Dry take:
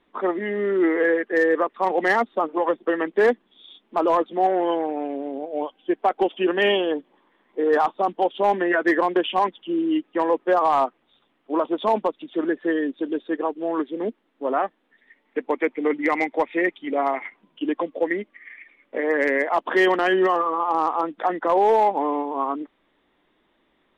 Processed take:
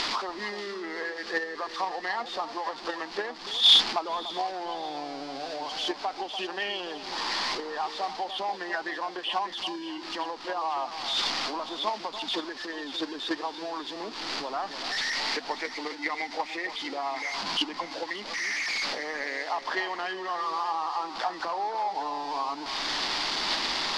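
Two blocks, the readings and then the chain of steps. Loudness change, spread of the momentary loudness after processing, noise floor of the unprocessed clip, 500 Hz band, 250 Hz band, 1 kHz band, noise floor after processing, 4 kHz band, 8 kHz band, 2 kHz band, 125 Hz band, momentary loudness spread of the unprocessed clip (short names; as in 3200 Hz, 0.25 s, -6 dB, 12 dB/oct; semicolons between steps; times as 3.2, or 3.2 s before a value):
-7.0 dB, 7 LU, -67 dBFS, -15.0 dB, -14.5 dB, -7.5 dB, -41 dBFS, +10.5 dB, n/a, -5.5 dB, -10.5 dB, 10 LU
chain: zero-crossing step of -29.5 dBFS; upward compressor, threshold -22 dBFS; bell 70 Hz -4.5 dB 1.5 oct; compressor 16:1, threshold -23 dBFS, peak gain reduction 10.5 dB; synth low-pass 4700 Hz, resonance Q 5.1; on a send: echo with dull and thin repeats by turns 0.292 s, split 1200 Hz, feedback 63%, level -9.5 dB; on the sum: gate -21 dBFS, range -18 dB; EQ curve 520 Hz 0 dB, 820 Hz +11 dB, 1500 Hz +8 dB; gain +5.5 dB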